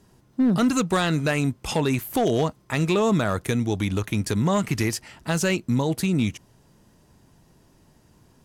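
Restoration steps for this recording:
clipped peaks rebuilt −14.5 dBFS

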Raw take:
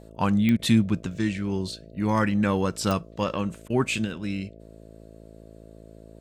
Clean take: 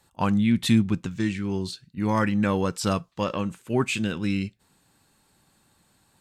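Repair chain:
click removal
hum removal 54.8 Hz, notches 12
repair the gap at 0:00.57/0:03.68, 19 ms
level correction +4.5 dB, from 0:04.05

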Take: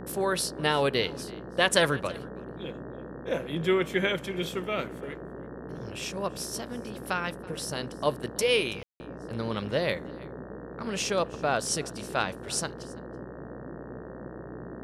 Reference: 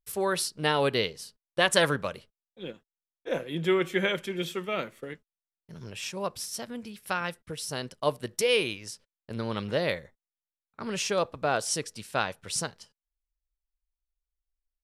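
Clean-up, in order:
hum removal 61.7 Hz, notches 30
ambience match 0:08.83–0:09.00
noise reduction from a noise print 30 dB
echo removal 329 ms −22 dB

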